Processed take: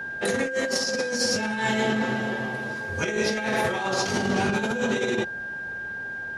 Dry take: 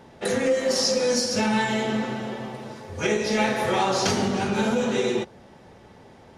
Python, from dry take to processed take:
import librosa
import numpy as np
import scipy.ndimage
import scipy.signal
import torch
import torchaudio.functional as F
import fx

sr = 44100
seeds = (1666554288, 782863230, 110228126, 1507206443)

y = fx.over_compress(x, sr, threshold_db=-25.0, ratio=-0.5)
y = y + 10.0 ** (-31.0 / 20.0) * np.sin(2.0 * np.pi * 1600.0 * np.arange(len(y)) / sr)